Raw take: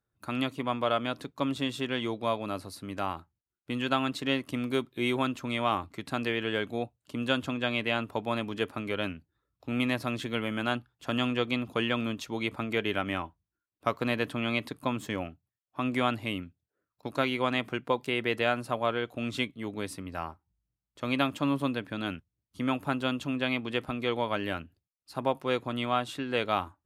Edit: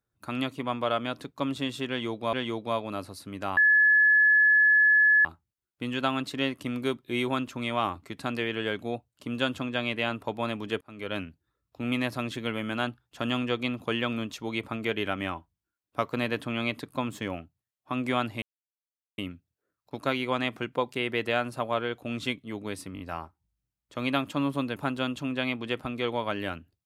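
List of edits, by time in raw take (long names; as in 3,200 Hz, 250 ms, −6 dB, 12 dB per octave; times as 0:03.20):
0:01.89–0:02.33: repeat, 2 plays
0:03.13: insert tone 1,710 Hz −16.5 dBFS 1.68 s
0:08.69–0:09.05: fade in
0:16.30: splice in silence 0.76 s
0:20.06: stutter 0.02 s, 4 plays
0:21.82–0:22.80: remove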